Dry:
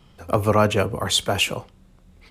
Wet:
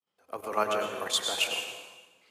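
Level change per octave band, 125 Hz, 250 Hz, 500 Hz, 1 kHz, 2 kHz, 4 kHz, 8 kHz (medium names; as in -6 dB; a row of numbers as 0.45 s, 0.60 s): -30.0 dB, -17.5 dB, -10.5 dB, -7.5 dB, -6.5 dB, -6.0 dB, -6.0 dB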